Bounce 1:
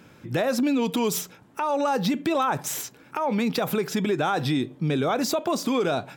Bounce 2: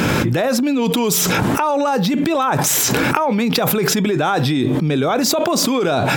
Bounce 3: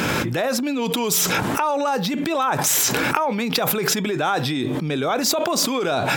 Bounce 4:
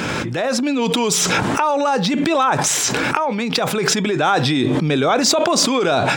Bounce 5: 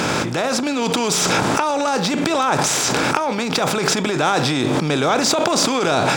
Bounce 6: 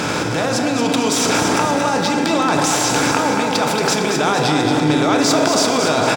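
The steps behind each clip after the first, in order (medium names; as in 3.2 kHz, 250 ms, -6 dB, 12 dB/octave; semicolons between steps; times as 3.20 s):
level flattener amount 100%; trim +4 dB
bass shelf 420 Hz -6.5 dB; trim -2 dB
level rider; Savitzky-Golay filter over 9 samples; trim -1 dB
spectral levelling over time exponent 0.6; trim -4.5 dB
feedback delay 227 ms, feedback 47%, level -6 dB; FDN reverb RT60 3.8 s, high-frequency decay 0.35×, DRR 4.5 dB; trim -1 dB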